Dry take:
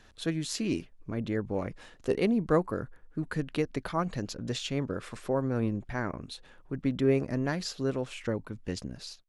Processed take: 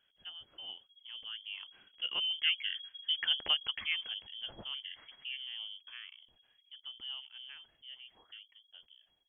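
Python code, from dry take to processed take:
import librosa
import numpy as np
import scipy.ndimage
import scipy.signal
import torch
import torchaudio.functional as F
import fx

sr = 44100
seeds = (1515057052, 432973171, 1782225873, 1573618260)

y = fx.doppler_pass(x, sr, speed_mps=10, closest_m=4.2, pass_at_s=3.23)
y = fx.freq_invert(y, sr, carrier_hz=3300)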